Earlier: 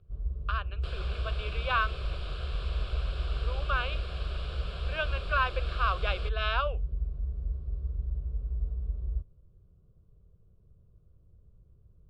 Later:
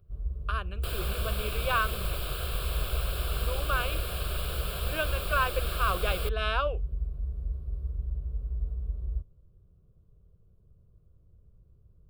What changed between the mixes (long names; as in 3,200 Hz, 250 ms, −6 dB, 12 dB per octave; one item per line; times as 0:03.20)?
speech: remove high-pass filter 590 Hz
second sound +5.5 dB
master: remove low-pass filter 5,700 Hz 24 dB per octave